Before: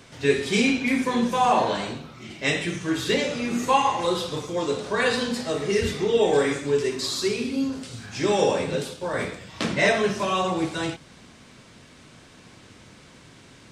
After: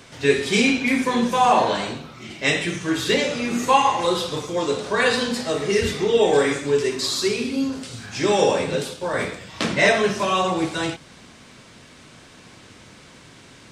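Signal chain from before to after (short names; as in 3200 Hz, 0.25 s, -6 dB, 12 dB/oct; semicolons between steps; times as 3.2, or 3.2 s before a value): low shelf 360 Hz -3 dB; gain +4 dB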